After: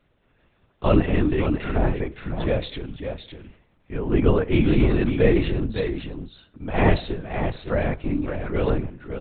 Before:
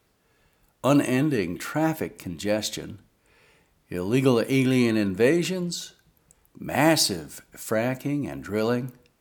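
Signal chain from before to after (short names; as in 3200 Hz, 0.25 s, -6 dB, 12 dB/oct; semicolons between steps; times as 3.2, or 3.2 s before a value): 3.99–4.51 LPF 2100 Hz 12 dB/oct; on a send: echo 0.56 s -7.5 dB; on the sum: LPC vocoder at 8 kHz whisper; low shelf 370 Hz +3.5 dB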